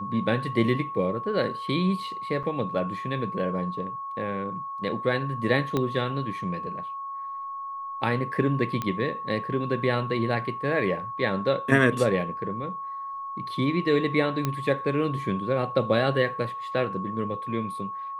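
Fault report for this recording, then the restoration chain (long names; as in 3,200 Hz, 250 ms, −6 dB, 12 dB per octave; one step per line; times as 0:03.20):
whistle 1,100 Hz −32 dBFS
0:02.43–0:02.44: drop-out 6.8 ms
0:05.77: click −13 dBFS
0:08.82: click −15 dBFS
0:14.45: click −12 dBFS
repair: click removal
notch filter 1,100 Hz, Q 30
repair the gap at 0:02.43, 6.8 ms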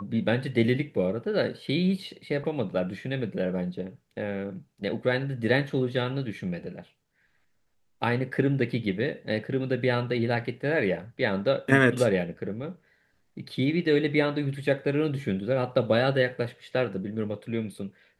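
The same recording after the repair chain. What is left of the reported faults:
0:05.77: click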